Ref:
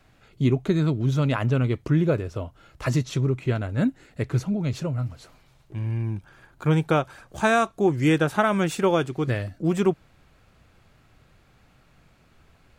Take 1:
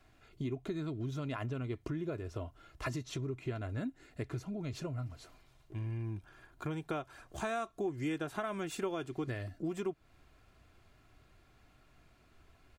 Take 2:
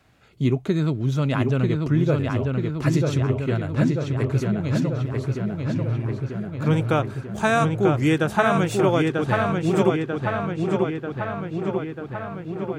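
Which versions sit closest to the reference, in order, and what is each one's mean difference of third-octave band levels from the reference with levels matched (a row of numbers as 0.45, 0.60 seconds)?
1, 2; 3.5, 6.5 decibels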